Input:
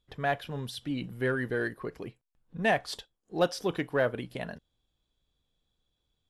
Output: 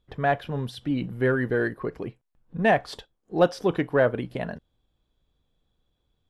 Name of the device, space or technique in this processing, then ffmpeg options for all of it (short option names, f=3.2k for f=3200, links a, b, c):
through cloth: -af "highshelf=f=2.8k:g=-12,volume=7dB"